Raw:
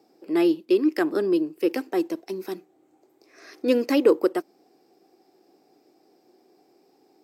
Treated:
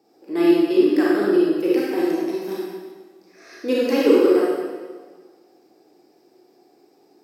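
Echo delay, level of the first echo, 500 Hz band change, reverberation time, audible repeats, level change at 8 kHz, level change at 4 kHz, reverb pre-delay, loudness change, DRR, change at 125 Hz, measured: no echo audible, no echo audible, +5.0 dB, 1.5 s, no echo audible, can't be measured, +4.0 dB, 29 ms, +4.5 dB, −6.5 dB, can't be measured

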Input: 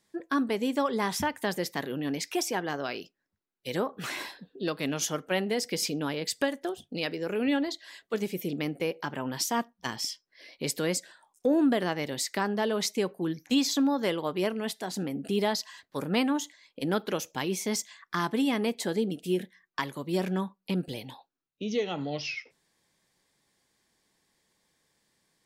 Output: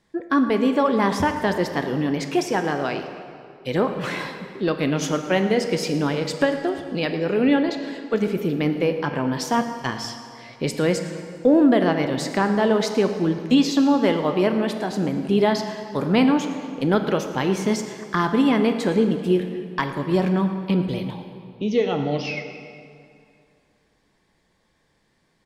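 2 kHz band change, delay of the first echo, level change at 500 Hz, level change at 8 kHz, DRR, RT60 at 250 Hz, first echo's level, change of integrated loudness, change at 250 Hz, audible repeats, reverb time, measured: +6.5 dB, 112 ms, +9.0 dB, −1.5 dB, 6.5 dB, 2.5 s, −17.5 dB, +8.5 dB, +9.5 dB, 1, 2.4 s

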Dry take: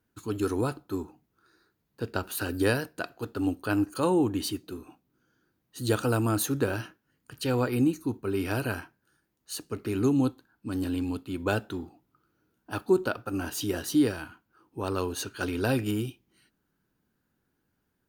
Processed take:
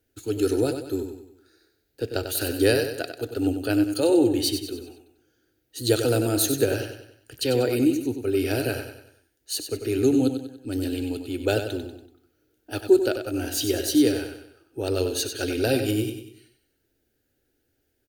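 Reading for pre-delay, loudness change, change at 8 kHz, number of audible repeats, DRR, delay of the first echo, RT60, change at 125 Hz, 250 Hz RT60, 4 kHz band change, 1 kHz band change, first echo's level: no reverb audible, +5.0 dB, +7.5 dB, 4, no reverb audible, 95 ms, no reverb audible, +1.0 dB, no reverb audible, +8.5 dB, −2.0 dB, −8.0 dB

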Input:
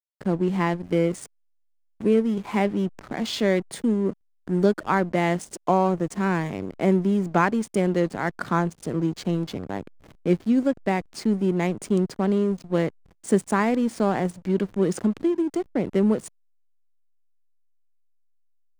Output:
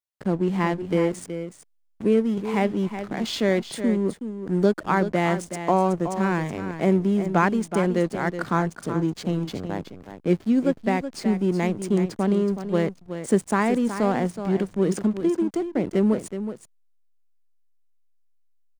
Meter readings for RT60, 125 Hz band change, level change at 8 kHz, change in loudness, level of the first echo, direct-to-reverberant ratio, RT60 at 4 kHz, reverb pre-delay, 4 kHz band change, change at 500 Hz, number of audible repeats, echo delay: no reverb audible, +0.5 dB, +0.5 dB, 0.0 dB, −10.0 dB, no reverb audible, no reverb audible, no reverb audible, +0.5 dB, +0.5 dB, 1, 372 ms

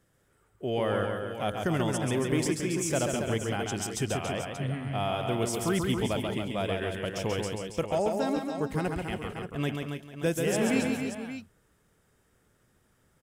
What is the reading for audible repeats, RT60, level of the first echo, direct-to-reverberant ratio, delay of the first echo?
5, no reverb audible, −4.5 dB, no reverb audible, 137 ms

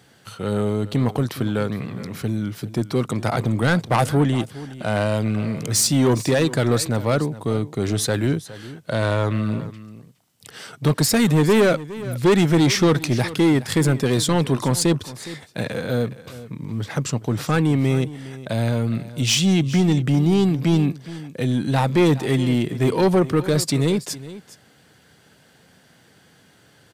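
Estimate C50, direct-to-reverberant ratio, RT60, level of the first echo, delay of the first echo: no reverb audible, no reverb audible, no reverb audible, −16.5 dB, 413 ms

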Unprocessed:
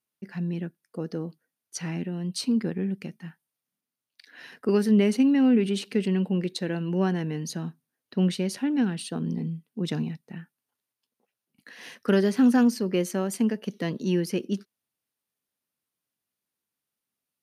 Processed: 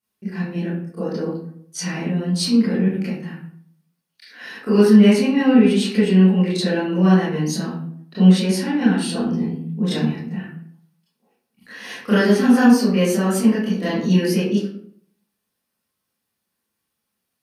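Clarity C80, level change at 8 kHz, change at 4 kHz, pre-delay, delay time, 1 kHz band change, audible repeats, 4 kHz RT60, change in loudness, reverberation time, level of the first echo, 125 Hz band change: 5.0 dB, +7.5 dB, +9.5 dB, 23 ms, no echo audible, +9.5 dB, no echo audible, 0.35 s, +8.5 dB, 0.60 s, no echo audible, +9.5 dB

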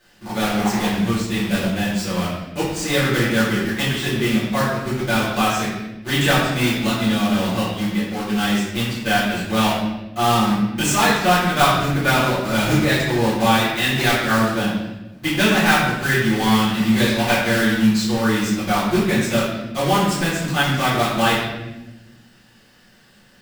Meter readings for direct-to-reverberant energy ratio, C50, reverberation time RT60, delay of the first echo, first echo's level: −12.5 dB, 1.0 dB, 1.0 s, no echo audible, no echo audible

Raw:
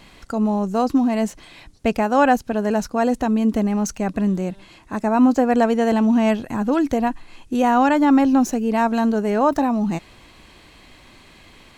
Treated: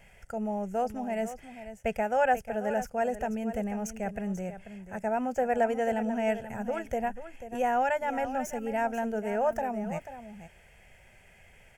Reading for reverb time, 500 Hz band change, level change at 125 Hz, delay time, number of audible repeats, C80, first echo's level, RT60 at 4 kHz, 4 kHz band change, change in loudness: no reverb audible, −7.5 dB, −12.5 dB, 489 ms, 1, no reverb audible, −12.0 dB, no reverb audible, −14.0 dB, −11.5 dB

